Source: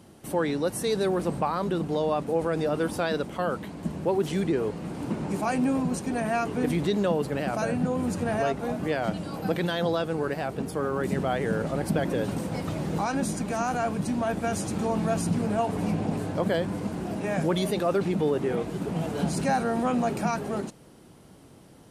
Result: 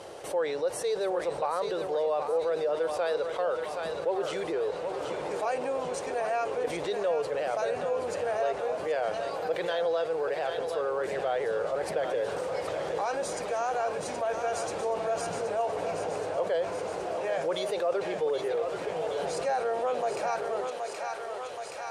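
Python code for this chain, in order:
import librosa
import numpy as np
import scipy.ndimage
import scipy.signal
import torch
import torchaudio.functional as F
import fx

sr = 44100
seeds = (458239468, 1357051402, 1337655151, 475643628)

y = scipy.signal.sosfilt(scipy.signal.butter(2, 7500.0, 'lowpass', fs=sr, output='sos'), x)
y = fx.low_shelf_res(y, sr, hz=340.0, db=-13.0, q=3.0)
y = fx.echo_thinned(y, sr, ms=774, feedback_pct=61, hz=700.0, wet_db=-7.5)
y = fx.env_flatten(y, sr, amount_pct=50)
y = y * librosa.db_to_amplitude(-9.0)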